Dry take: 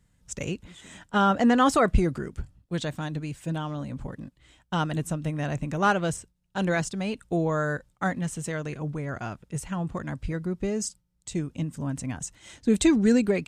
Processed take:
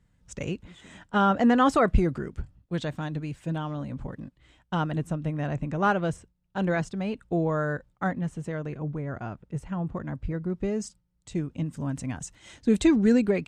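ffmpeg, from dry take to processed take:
ffmpeg -i in.wav -af "asetnsamples=nb_out_samples=441:pad=0,asendcmd='4.75 lowpass f 1800;8.11 lowpass f 1100;10.5 lowpass f 2400;11.66 lowpass f 5500;12.8 lowpass f 3000',lowpass=frequency=3000:poles=1" out.wav

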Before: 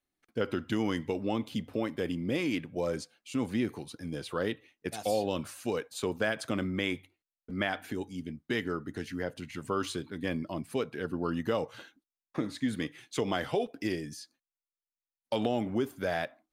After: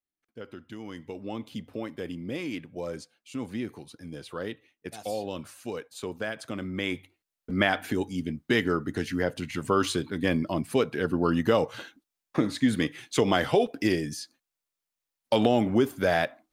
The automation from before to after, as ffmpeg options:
ffmpeg -i in.wav -af "volume=7.5dB,afade=type=in:start_time=0.82:duration=0.66:silence=0.398107,afade=type=in:start_time=6.6:duration=0.95:silence=0.298538" out.wav

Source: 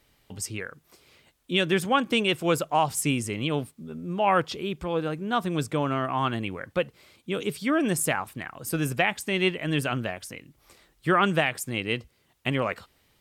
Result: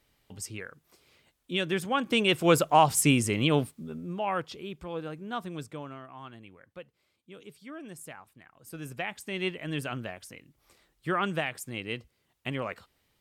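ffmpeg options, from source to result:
ffmpeg -i in.wav -af "volume=15dB,afade=type=in:start_time=1.94:duration=0.63:silence=0.375837,afade=type=out:start_time=3.57:duration=0.7:silence=0.266073,afade=type=out:start_time=5.32:duration=0.74:silence=0.298538,afade=type=in:start_time=8.51:duration=0.98:silence=0.251189" out.wav

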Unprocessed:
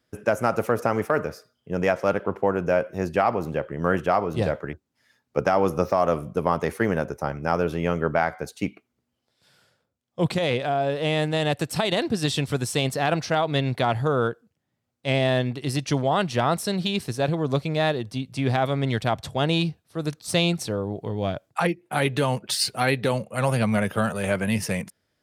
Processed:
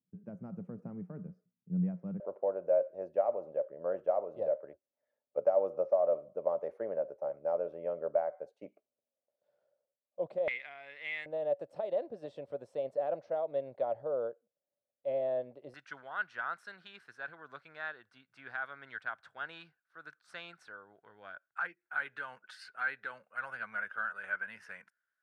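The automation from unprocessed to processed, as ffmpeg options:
ffmpeg -i in.wav -af "asetnsamples=nb_out_samples=441:pad=0,asendcmd='2.2 bandpass f 580;10.48 bandpass f 2100;11.26 bandpass f 570;15.74 bandpass f 1500',bandpass=frequency=180:width_type=q:width=9.8:csg=0" out.wav

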